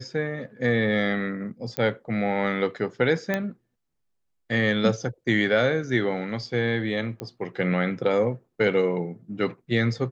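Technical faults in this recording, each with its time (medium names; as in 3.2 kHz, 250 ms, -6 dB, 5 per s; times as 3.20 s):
1.77 s: pop -11 dBFS
3.34 s: pop -12 dBFS
7.20 s: pop -18 dBFS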